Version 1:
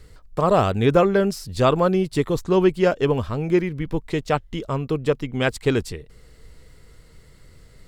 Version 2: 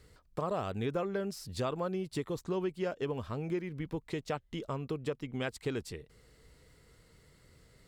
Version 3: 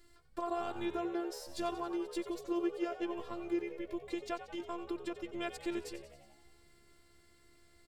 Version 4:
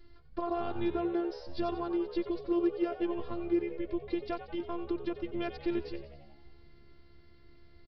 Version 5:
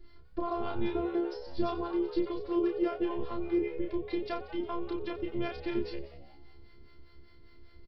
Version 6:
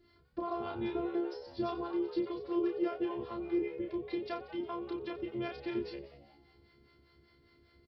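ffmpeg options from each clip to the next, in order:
ffmpeg -i in.wav -af "highpass=frequency=87:poles=1,acompressor=threshold=-25dB:ratio=3,volume=-8dB" out.wav
ffmpeg -i in.wav -filter_complex "[0:a]afftfilt=real='hypot(re,im)*cos(PI*b)':imag='0':win_size=512:overlap=0.75,asplit=8[link_01][link_02][link_03][link_04][link_05][link_06][link_07][link_08];[link_02]adelay=91,afreqshift=71,volume=-12.5dB[link_09];[link_03]adelay=182,afreqshift=142,volume=-16.8dB[link_10];[link_04]adelay=273,afreqshift=213,volume=-21.1dB[link_11];[link_05]adelay=364,afreqshift=284,volume=-25.4dB[link_12];[link_06]adelay=455,afreqshift=355,volume=-29.7dB[link_13];[link_07]adelay=546,afreqshift=426,volume=-34dB[link_14];[link_08]adelay=637,afreqshift=497,volume=-38.3dB[link_15];[link_01][link_09][link_10][link_11][link_12][link_13][link_14][link_15]amix=inputs=8:normalize=0,volume=1dB" out.wav
ffmpeg -i in.wav -af "aresample=11025,volume=26dB,asoftclip=hard,volume=-26dB,aresample=44100,lowshelf=frequency=350:gain=11" out.wav
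ffmpeg -i in.wav -filter_complex "[0:a]acrossover=split=560[link_01][link_02];[link_01]aeval=exprs='val(0)*(1-0.7/2+0.7/2*cos(2*PI*5*n/s))':channel_layout=same[link_03];[link_02]aeval=exprs='val(0)*(1-0.7/2-0.7/2*cos(2*PI*5*n/s))':channel_layout=same[link_04];[link_03][link_04]amix=inputs=2:normalize=0,asplit=2[link_05][link_06];[link_06]adelay=31,volume=-4dB[link_07];[link_05][link_07]amix=inputs=2:normalize=0,volume=3.5dB" out.wav
ffmpeg -i in.wav -af "highpass=88,volume=-3dB" out.wav

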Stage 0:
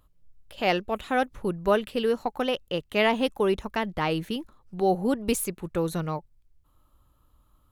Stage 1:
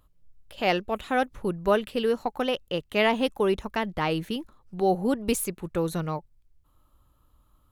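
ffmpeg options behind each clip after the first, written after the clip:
ffmpeg -i in.wav -af anull out.wav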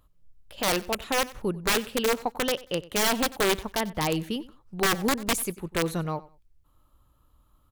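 ffmpeg -i in.wav -af "aeval=exprs='(mod(7.08*val(0)+1,2)-1)/7.08':channel_layout=same,aecho=1:1:93|186:0.106|0.0244" out.wav

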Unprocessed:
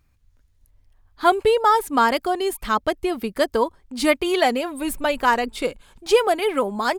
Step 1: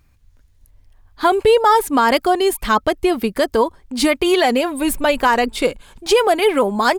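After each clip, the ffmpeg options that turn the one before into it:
ffmpeg -i in.wav -af "bandreject=frequency=1300:width=26,alimiter=level_in=11.5dB:limit=-1dB:release=50:level=0:latency=1,volume=-4.5dB" out.wav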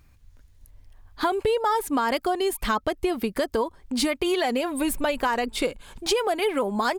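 ffmpeg -i in.wav -af "acompressor=threshold=-24dB:ratio=3" out.wav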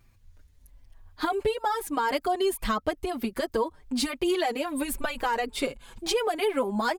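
ffmpeg -i in.wav -filter_complex "[0:a]asplit=2[link_01][link_02];[link_02]adelay=5.5,afreqshift=-1.2[link_03];[link_01][link_03]amix=inputs=2:normalize=1" out.wav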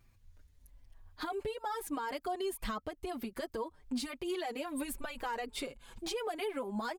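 ffmpeg -i in.wav -af "alimiter=limit=-23.5dB:level=0:latency=1:release=280,volume=-5dB" out.wav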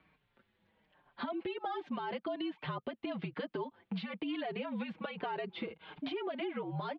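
ffmpeg -i in.wav -filter_complex "[0:a]highpass=frequency=190:width_type=q:width=0.5412,highpass=frequency=190:width_type=q:width=1.307,lowpass=frequency=3500:width_type=q:width=0.5176,lowpass=frequency=3500:width_type=q:width=0.7071,lowpass=frequency=3500:width_type=q:width=1.932,afreqshift=-60,acrossover=split=1000|2700[link_01][link_02][link_03];[link_01]acompressor=threshold=-44dB:ratio=4[link_04];[link_02]acompressor=threshold=-57dB:ratio=4[link_05];[link_03]acompressor=threshold=-58dB:ratio=4[link_06];[link_04][link_05][link_06]amix=inputs=3:normalize=0,volume=7dB" out.wav

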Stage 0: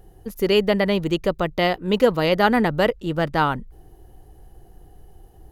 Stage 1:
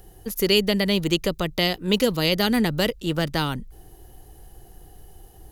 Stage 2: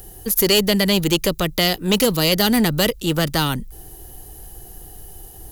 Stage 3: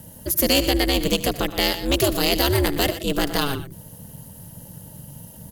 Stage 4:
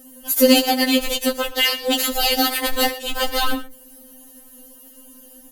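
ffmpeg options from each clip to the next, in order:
ffmpeg -i in.wav -filter_complex "[0:a]highshelf=frequency=2100:gain=11,acrossover=split=390|3000[link_01][link_02][link_03];[link_02]acompressor=threshold=-27dB:ratio=6[link_04];[link_01][link_04][link_03]amix=inputs=3:normalize=0" out.wav
ffmpeg -i in.wav -filter_complex "[0:a]acrossover=split=690[link_01][link_02];[link_02]crystalizer=i=1.5:c=0[link_03];[link_01][link_03]amix=inputs=2:normalize=0,asoftclip=type=tanh:threshold=-15dB,volume=5.5dB" out.wav
ffmpeg -i in.wav -af "aeval=exprs='val(0)*sin(2*PI*140*n/s)':channel_layout=same,aecho=1:1:75|118|124:0.126|0.168|0.158" out.wav
ffmpeg -i in.wav -filter_complex "[0:a]asplit=2[link_01][link_02];[link_02]aeval=exprs='val(0)*gte(abs(val(0)),0.0794)':channel_layout=same,volume=-5dB[link_03];[link_01][link_03]amix=inputs=2:normalize=0,afftfilt=real='re*3.46*eq(mod(b,12),0)':imag='im*3.46*eq(mod(b,12),0)':win_size=2048:overlap=0.75,volume=1.5dB" out.wav

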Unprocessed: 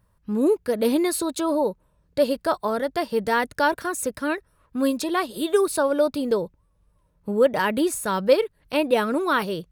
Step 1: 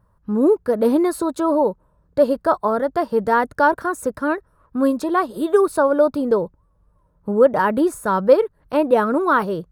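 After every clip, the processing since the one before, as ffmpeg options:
ffmpeg -i in.wav -af "highshelf=frequency=1800:width_type=q:width=1.5:gain=-10,volume=4dB" out.wav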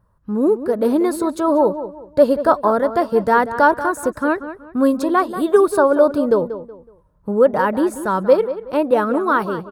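ffmpeg -i in.wav -filter_complex "[0:a]dynaudnorm=framelen=850:gausssize=3:maxgain=11.5dB,asplit=2[link_01][link_02];[link_02]adelay=186,lowpass=frequency=2900:poles=1,volume=-12dB,asplit=2[link_03][link_04];[link_04]adelay=186,lowpass=frequency=2900:poles=1,volume=0.31,asplit=2[link_05][link_06];[link_06]adelay=186,lowpass=frequency=2900:poles=1,volume=0.31[link_07];[link_03][link_05][link_07]amix=inputs=3:normalize=0[link_08];[link_01][link_08]amix=inputs=2:normalize=0,volume=-1dB" out.wav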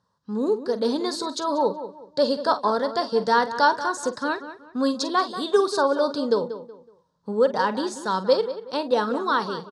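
ffmpeg -i in.wav -filter_complex "[0:a]highpass=230,equalizer=frequency=330:width_type=q:width=4:gain=-10,equalizer=frequency=620:width_type=q:width=4:gain=-8,equalizer=frequency=1300:width_type=q:width=4:gain=-4,equalizer=frequency=2200:width_type=q:width=4:gain=-4,lowpass=frequency=5000:width=0.5412,lowpass=frequency=5000:width=1.3066,asplit=2[link_01][link_02];[link_02]adelay=47,volume=-13.5dB[link_03];[link_01][link_03]amix=inputs=2:normalize=0,aexciter=amount=8.6:drive=4.3:freq=3700,volume=-2.5dB" out.wav

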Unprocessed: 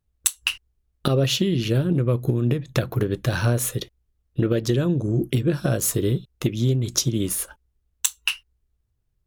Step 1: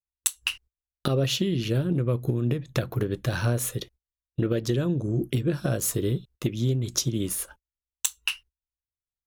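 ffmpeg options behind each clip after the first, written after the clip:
ffmpeg -i in.wav -af "agate=range=-25dB:threshold=-44dB:ratio=16:detection=peak,volume=-4dB" out.wav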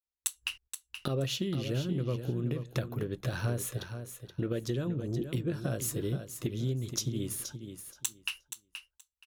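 ffmpeg -i in.wav -af "aecho=1:1:475|950|1425:0.355|0.0603|0.0103,volume=-7.5dB" out.wav

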